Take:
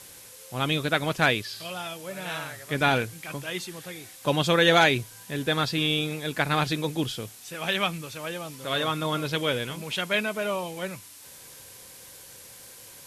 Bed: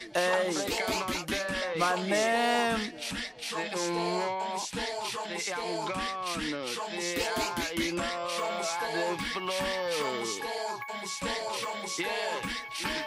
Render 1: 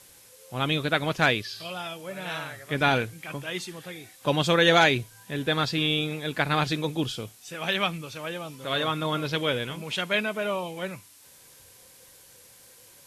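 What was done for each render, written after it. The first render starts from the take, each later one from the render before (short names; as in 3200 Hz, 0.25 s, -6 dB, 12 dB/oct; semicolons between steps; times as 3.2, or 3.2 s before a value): noise print and reduce 6 dB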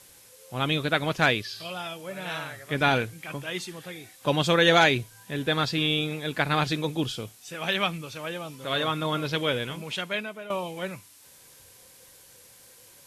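9.76–10.5 fade out, to -13.5 dB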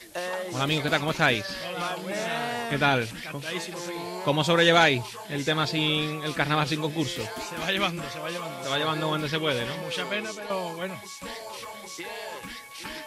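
add bed -5 dB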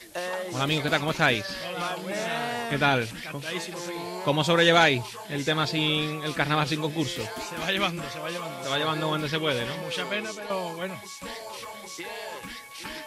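nothing audible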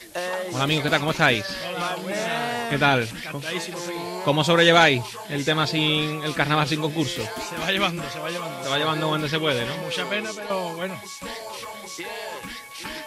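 gain +3.5 dB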